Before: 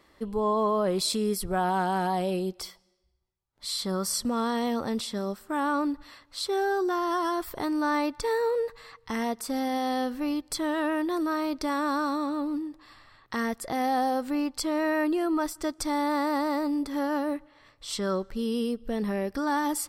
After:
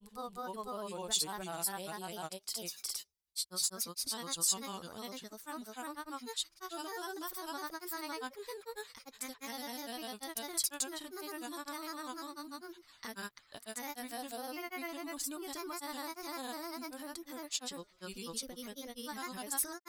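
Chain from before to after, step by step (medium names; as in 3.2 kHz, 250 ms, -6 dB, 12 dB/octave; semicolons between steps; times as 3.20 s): pre-emphasis filter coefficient 0.9; granulator, spray 458 ms, pitch spread up and down by 3 st; trim +2.5 dB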